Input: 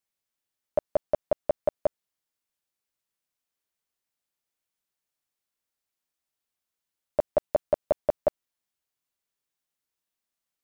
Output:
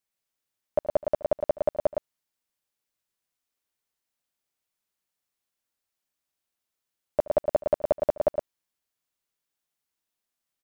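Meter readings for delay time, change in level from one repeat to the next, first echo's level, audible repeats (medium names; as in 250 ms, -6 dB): 74 ms, no regular repeats, -20.0 dB, 2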